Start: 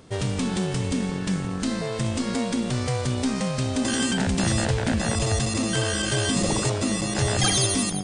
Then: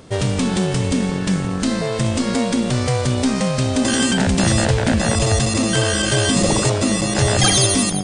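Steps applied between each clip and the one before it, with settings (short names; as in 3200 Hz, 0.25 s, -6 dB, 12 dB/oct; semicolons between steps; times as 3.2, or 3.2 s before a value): bell 580 Hz +3 dB 0.29 oct; gain +6.5 dB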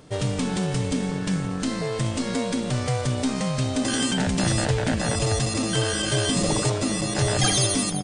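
comb 6.7 ms, depth 33%; gain -6.5 dB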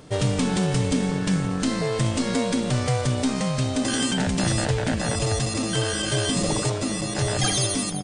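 vocal rider 2 s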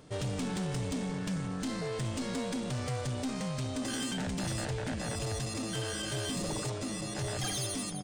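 soft clip -20.5 dBFS, distortion -14 dB; gain -8.5 dB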